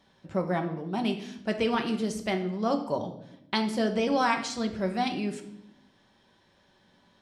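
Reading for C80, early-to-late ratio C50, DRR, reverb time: 13.5 dB, 10.5 dB, 4.0 dB, 0.80 s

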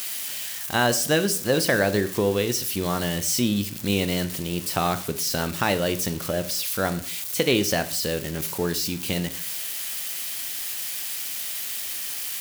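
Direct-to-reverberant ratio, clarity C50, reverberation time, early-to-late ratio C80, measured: 12.0 dB, 16.0 dB, 0.50 s, 19.0 dB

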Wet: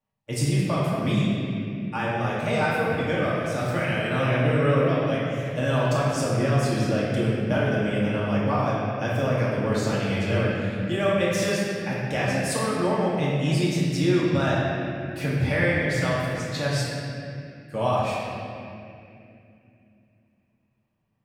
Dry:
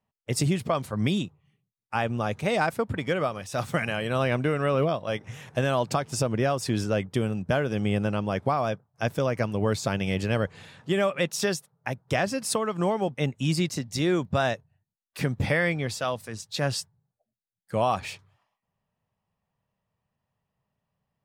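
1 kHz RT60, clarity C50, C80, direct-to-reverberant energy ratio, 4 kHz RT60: 2.4 s, −2.5 dB, −0.5 dB, −8.0 dB, 2.1 s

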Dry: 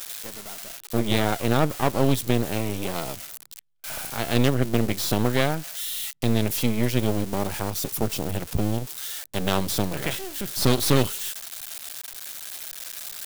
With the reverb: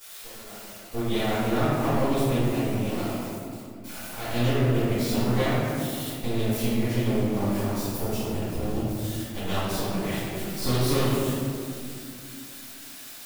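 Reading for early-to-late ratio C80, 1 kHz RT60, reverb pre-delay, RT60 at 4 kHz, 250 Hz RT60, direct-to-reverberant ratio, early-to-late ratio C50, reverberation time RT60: −1.0 dB, 2.2 s, 3 ms, 1.2 s, 4.0 s, −16.0 dB, −4.0 dB, 2.5 s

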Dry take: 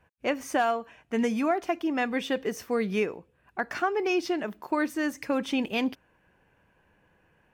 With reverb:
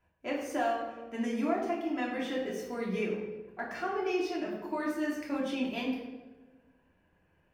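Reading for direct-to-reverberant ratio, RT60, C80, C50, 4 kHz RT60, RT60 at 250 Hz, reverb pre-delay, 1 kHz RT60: −4.0 dB, 1.3 s, 5.5 dB, 3.0 dB, 0.80 s, 1.5 s, 3 ms, 1.1 s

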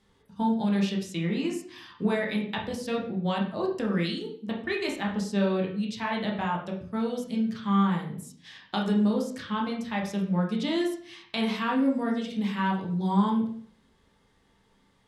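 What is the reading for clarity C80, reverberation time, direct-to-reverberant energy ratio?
10.0 dB, 0.50 s, −1.5 dB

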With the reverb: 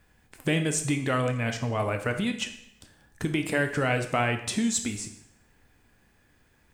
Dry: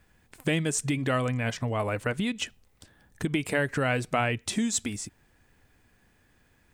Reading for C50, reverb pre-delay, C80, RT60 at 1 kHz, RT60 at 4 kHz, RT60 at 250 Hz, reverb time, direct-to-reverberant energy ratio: 9.5 dB, 6 ms, 12.5 dB, 0.75 s, 0.70 s, 0.80 s, 0.80 s, 6.0 dB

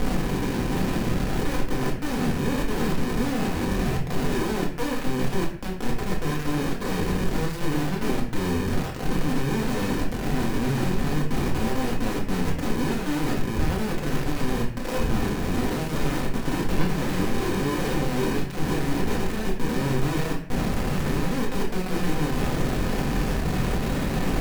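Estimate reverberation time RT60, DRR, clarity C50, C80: 0.50 s, −3.5 dB, 6.5 dB, 10.0 dB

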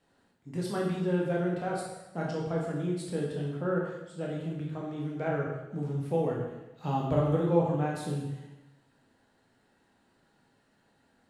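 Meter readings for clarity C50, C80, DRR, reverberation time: 2.0 dB, 4.5 dB, −3.5 dB, 1.0 s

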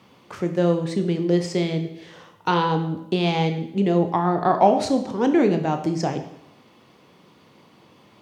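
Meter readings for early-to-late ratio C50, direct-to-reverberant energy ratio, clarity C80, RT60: 9.5 dB, 6.0 dB, 12.0 dB, 0.80 s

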